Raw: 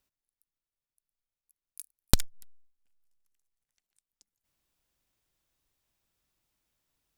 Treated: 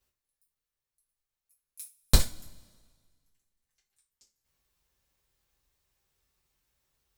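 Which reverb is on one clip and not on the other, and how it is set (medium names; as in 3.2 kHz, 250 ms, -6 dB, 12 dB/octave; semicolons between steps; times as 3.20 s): two-slope reverb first 0.26 s, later 1.7 s, from -27 dB, DRR -7.5 dB; trim -5.5 dB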